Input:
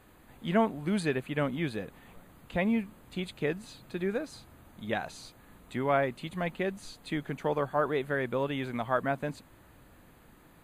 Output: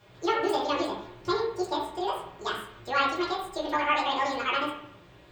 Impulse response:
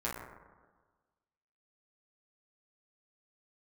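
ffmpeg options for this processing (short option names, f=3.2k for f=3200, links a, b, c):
-filter_complex "[1:a]atrim=start_sample=2205[a];[0:a][a]afir=irnorm=-1:irlink=0,asetrate=88200,aresample=44100,volume=-2.5dB"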